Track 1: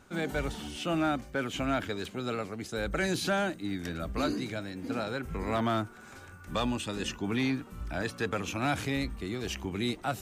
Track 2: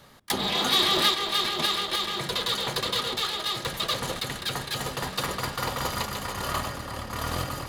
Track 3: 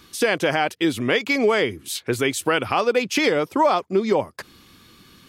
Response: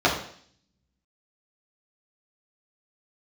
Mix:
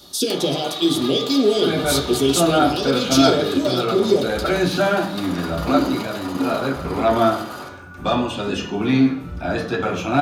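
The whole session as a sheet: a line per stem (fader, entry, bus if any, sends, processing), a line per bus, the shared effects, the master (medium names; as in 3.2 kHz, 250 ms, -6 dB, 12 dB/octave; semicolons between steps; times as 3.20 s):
-1.5 dB, 1.50 s, send -7.5 dB, none
-3.5 dB, 0.00 s, send -16 dB, high-pass 280 Hz; compression 6:1, threshold -29 dBFS, peak gain reduction 11 dB
-1.5 dB, 0.00 s, send -16.5 dB, FFT filter 380 Hz 0 dB, 1.9 kHz -22 dB, 3.5 kHz +7 dB; step-sequenced notch 2.9 Hz 780–1800 Hz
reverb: on, RT60 0.55 s, pre-delay 3 ms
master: word length cut 12-bit, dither none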